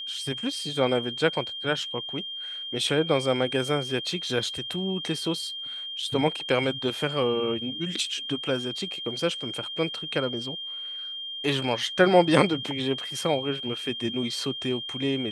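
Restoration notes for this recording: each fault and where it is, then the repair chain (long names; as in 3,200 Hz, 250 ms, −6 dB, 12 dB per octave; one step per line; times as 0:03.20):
whistle 3,200 Hz −33 dBFS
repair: notch filter 3,200 Hz, Q 30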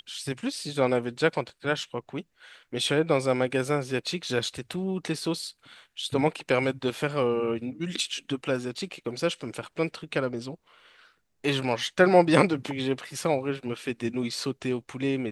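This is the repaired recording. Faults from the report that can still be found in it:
none of them is left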